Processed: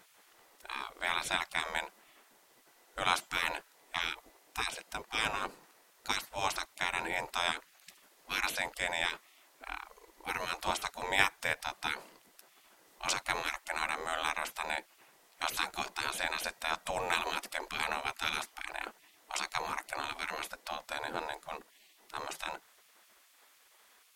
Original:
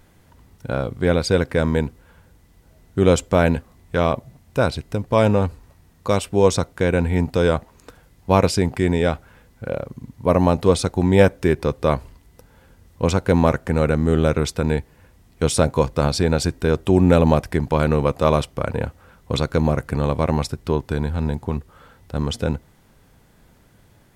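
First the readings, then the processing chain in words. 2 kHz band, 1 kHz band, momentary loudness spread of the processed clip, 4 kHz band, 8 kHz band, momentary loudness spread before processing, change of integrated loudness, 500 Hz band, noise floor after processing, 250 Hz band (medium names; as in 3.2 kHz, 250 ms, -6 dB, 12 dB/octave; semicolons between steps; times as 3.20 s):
-3.5 dB, -9.5 dB, 11 LU, -4.0 dB, -8.5 dB, 11 LU, -15.0 dB, -24.5 dB, -65 dBFS, -30.0 dB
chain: spectral gate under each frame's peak -20 dB weak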